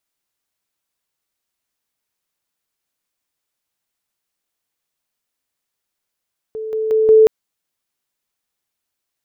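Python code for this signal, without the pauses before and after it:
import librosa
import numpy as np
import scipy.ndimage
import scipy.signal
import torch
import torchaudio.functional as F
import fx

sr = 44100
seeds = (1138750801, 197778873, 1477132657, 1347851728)

y = fx.level_ladder(sr, hz=438.0, from_db=-23.5, step_db=6.0, steps=4, dwell_s=0.18, gap_s=0.0)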